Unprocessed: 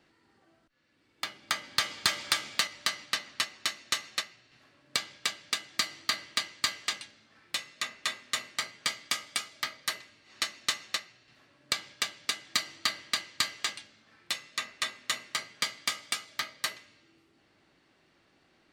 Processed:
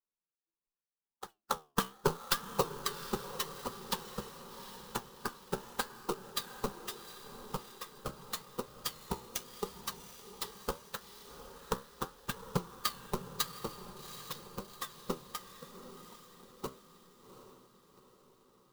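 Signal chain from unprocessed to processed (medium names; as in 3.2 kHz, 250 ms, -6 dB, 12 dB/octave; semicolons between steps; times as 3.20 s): expander on every frequency bin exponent 3; 15.44–16.49 s: steep low-pass 660 Hz; in parallel at -0.5 dB: compression, threshold -46 dBFS, peak gain reduction 20 dB; on the sum: decimation with a swept rate 15×, swing 160% 2 Hz; static phaser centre 440 Hz, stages 8; flange 0.81 Hz, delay 7.7 ms, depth 8.2 ms, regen +74%; on a send: echo that smears into a reverb 766 ms, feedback 51%, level -10.5 dB; on the sum: sampling jitter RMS 0.028 ms; trim +8.5 dB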